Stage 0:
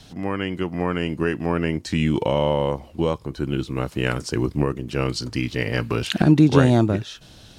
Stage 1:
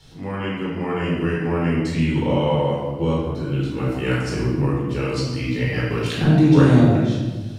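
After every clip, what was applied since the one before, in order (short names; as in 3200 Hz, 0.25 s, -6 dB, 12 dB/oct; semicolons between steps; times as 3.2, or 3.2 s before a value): shoebox room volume 890 m³, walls mixed, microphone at 4.3 m; gain -9 dB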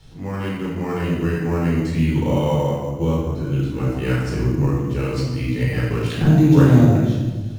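low shelf 120 Hz +8 dB; in parallel at -10 dB: sample-rate reducer 6600 Hz, jitter 0%; on the sum: gain -3.5 dB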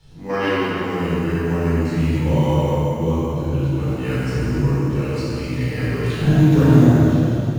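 spectral gain 0.3–0.66, 250–6200 Hz +11 dB; plate-style reverb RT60 3 s, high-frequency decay 0.9×, DRR -4 dB; gain -5 dB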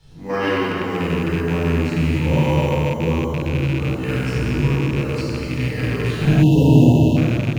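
rattling part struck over -21 dBFS, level -19 dBFS; spectral delete 6.43–7.17, 1000–2600 Hz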